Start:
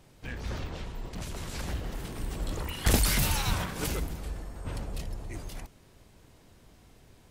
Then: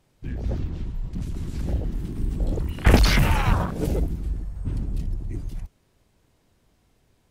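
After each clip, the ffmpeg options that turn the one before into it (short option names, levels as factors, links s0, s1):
-af "afwtdn=0.0224,volume=2.82"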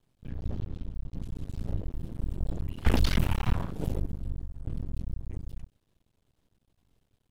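-af "bass=f=250:g=6,treble=f=4000:g=-12,aexciter=amount=3:drive=4.5:freq=3000,aeval=exprs='max(val(0),0)':c=same,volume=0.376"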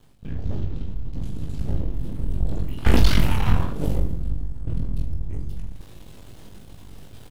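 -af "aecho=1:1:20|45|76.25|115.3|164.1:0.631|0.398|0.251|0.158|0.1,areverse,acompressor=mode=upward:threshold=0.0447:ratio=2.5,areverse,volume=1.78"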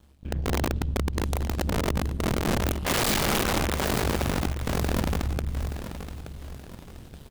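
-af "aeval=exprs='val(0)*sin(2*PI*70*n/s)':c=same,aeval=exprs='(mod(8.91*val(0)+1,2)-1)/8.91':c=same,aecho=1:1:875|1750|2625|3500:0.282|0.104|0.0386|0.0143"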